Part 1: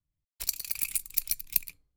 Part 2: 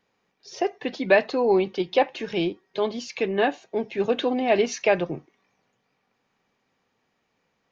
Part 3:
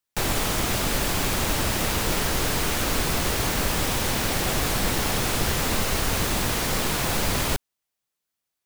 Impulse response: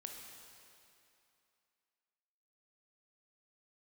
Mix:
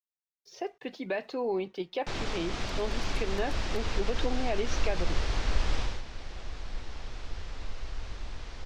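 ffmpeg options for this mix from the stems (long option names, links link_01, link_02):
-filter_complex "[0:a]lowpass=4900,adelay=2200,volume=-15dB[link_01];[1:a]agate=range=-33dB:threshold=-48dB:ratio=3:detection=peak,alimiter=limit=-13.5dB:level=0:latency=1:release=104,aeval=exprs='sgn(val(0))*max(abs(val(0))-0.00112,0)':channel_layout=same,volume=-9dB,asplit=2[link_02][link_03];[2:a]lowpass=frequency=5700:width=0.5412,lowpass=frequency=5700:width=1.3066,asubboost=boost=8:cutoff=56,adelay=1900,volume=-9.5dB,afade=type=out:start_time=5.79:duration=0.23:silence=0.266073[link_04];[link_03]apad=whole_len=465655[link_05];[link_04][link_05]sidechaincompress=threshold=-34dB:ratio=8:attack=36:release=136[link_06];[link_01][link_02][link_06]amix=inputs=3:normalize=0"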